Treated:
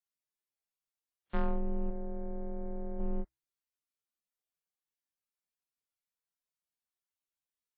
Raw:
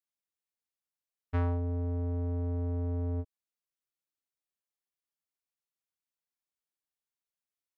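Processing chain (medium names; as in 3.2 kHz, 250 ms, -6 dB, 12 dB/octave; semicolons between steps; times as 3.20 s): de-hum 196.2 Hz, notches 2; frequency shift -66 Hz; waveshaping leveller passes 1; 1.90–3.00 s: rippled Chebyshev low-pass 2.3 kHz, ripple 6 dB; trim -1.5 dB; WMA 32 kbps 44.1 kHz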